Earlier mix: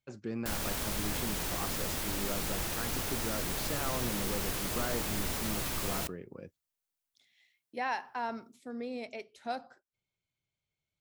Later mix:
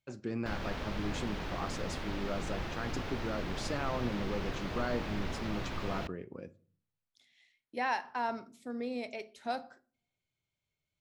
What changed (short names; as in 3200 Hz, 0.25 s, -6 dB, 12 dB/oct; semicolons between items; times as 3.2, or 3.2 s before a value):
speech: send on; background: add air absorption 250 m